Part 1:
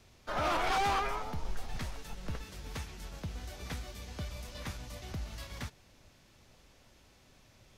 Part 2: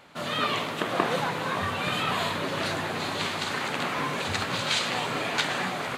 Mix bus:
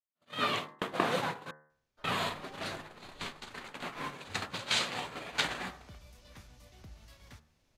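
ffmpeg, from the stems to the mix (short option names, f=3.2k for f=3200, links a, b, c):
-filter_complex "[0:a]adelay=1700,volume=-11.5dB,afade=t=in:st=5.09:d=0.63:silence=0.251189[a];[1:a]agate=range=-53dB:threshold=-27dB:ratio=16:detection=peak,bandreject=f=68.54:t=h:w=4,bandreject=f=137.08:t=h:w=4,bandreject=f=205.62:t=h:w=4,bandreject=f=274.16:t=h:w=4,bandreject=f=342.7:t=h:w=4,bandreject=f=411.24:t=h:w=4,bandreject=f=479.78:t=h:w=4,bandreject=f=548.32:t=h:w=4,bandreject=f=616.86:t=h:w=4,bandreject=f=685.4:t=h:w=4,bandreject=f=753.94:t=h:w=4,bandreject=f=822.48:t=h:w=4,bandreject=f=891.02:t=h:w=4,bandreject=f=959.56:t=h:w=4,bandreject=f=1.0281k:t=h:w=4,bandreject=f=1.09664k:t=h:w=4,bandreject=f=1.16518k:t=h:w=4,bandreject=f=1.23372k:t=h:w=4,bandreject=f=1.30226k:t=h:w=4,bandreject=f=1.3708k:t=h:w=4,volume=-3dB,asplit=3[b][c][d];[b]atrim=end=1.51,asetpts=PTS-STARTPTS,afade=t=out:st=1.506:d=0.004:c=hsin[e];[c]atrim=start=1.51:end=2.04,asetpts=PTS-STARTPTS,volume=0[f];[d]atrim=start=2.04,asetpts=PTS-STARTPTS,afade=t=in:d=0.004:c=hsin[g];[e][f][g]concat=n=3:v=0:a=1[h];[a][h]amix=inputs=2:normalize=0,bandreject=f=76.16:t=h:w=4,bandreject=f=152.32:t=h:w=4,bandreject=f=228.48:t=h:w=4,bandreject=f=304.64:t=h:w=4,bandreject=f=380.8:t=h:w=4,bandreject=f=456.96:t=h:w=4,bandreject=f=533.12:t=h:w=4,bandreject=f=609.28:t=h:w=4,bandreject=f=685.44:t=h:w=4,bandreject=f=761.6:t=h:w=4,bandreject=f=837.76:t=h:w=4,bandreject=f=913.92:t=h:w=4,bandreject=f=990.08:t=h:w=4,bandreject=f=1.06624k:t=h:w=4,bandreject=f=1.1424k:t=h:w=4,bandreject=f=1.21856k:t=h:w=4,bandreject=f=1.29472k:t=h:w=4,bandreject=f=1.37088k:t=h:w=4,bandreject=f=1.44704k:t=h:w=4,bandreject=f=1.5232k:t=h:w=4,bandreject=f=1.59936k:t=h:w=4,bandreject=f=1.67552k:t=h:w=4,bandreject=f=1.75168k:t=h:w=4,bandreject=f=1.82784k:t=h:w=4,bandreject=f=1.904k:t=h:w=4,bandreject=f=1.98016k:t=h:w=4,bandreject=f=2.05632k:t=h:w=4"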